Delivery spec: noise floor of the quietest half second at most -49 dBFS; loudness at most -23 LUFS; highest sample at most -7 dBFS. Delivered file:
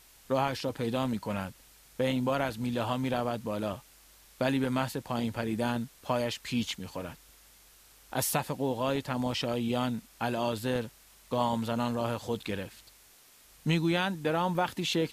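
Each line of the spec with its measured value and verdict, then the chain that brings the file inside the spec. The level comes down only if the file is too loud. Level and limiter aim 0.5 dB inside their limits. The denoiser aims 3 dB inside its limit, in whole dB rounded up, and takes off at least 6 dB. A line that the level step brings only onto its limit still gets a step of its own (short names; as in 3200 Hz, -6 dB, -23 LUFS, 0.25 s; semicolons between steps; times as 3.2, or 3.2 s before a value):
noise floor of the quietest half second -58 dBFS: OK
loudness -31.5 LUFS: OK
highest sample -13.5 dBFS: OK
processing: none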